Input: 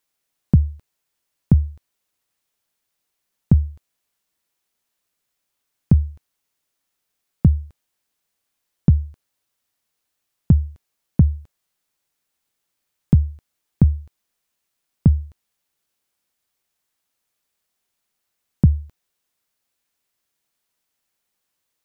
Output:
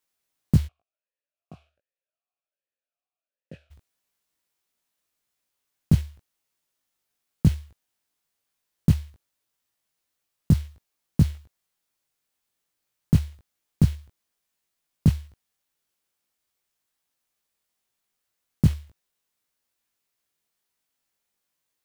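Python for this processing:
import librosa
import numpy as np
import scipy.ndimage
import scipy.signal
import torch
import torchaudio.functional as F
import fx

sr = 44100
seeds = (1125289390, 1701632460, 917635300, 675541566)

y = fx.block_float(x, sr, bits=5)
y = fx.doubler(y, sr, ms=19.0, db=-3)
y = fx.vowel_sweep(y, sr, vowels='a-e', hz=1.3, at=(0.67, 3.7), fade=0.02)
y = y * 10.0 ** (-5.0 / 20.0)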